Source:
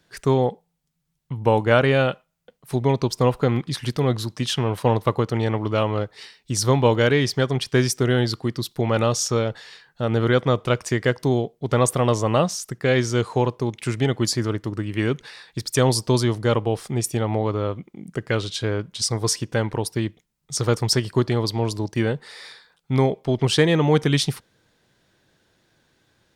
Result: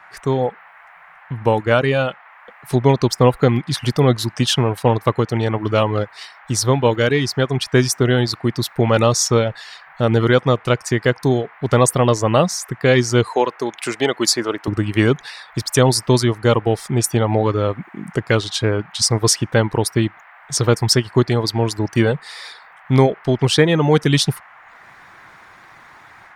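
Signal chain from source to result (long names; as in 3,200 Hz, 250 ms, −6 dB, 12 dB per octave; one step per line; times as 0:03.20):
0:13.30–0:14.68: high-pass filter 370 Hz 12 dB per octave
reverb reduction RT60 0.54 s
automatic gain control gain up to 12.5 dB
noise in a band 700–2,100 Hz −44 dBFS
level −1 dB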